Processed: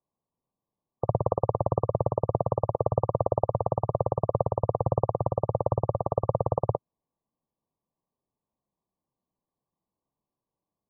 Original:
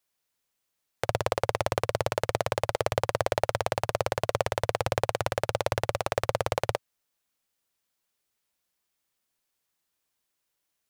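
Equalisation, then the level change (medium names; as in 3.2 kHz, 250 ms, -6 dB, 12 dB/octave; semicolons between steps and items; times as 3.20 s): brick-wall FIR low-pass 1.2 kHz; peaking EQ 170 Hz +8.5 dB 1.7 oct; 0.0 dB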